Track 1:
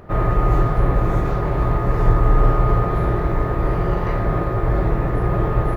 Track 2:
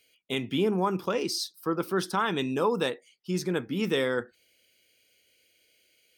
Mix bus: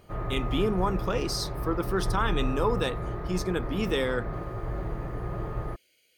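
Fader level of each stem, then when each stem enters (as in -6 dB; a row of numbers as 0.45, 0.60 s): -14.0, -1.0 dB; 0.00, 0.00 s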